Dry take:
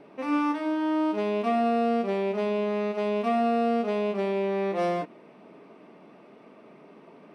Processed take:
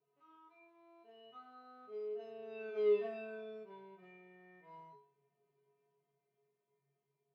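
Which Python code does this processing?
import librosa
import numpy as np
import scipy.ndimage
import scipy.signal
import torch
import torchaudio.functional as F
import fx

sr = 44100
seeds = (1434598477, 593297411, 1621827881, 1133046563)

y = fx.doppler_pass(x, sr, speed_mps=27, closest_m=7.5, pass_at_s=2.88)
y = scipy.signal.sosfilt(scipy.signal.butter(2, 3400.0, 'lowpass', fs=sr, output='sos'), y)
y = fx.comb_fb(y, sr, f0_hz=140.0, decay_s=0.49, harmonics='odd', damping=0.0, mix_pct=100)
y = y * 10.0 ** (6.0 / 20.0)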